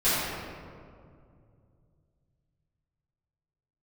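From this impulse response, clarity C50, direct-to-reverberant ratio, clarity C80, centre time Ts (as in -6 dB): -4.0 dB, -15.5 dB, -1.5 dB, 0.142 s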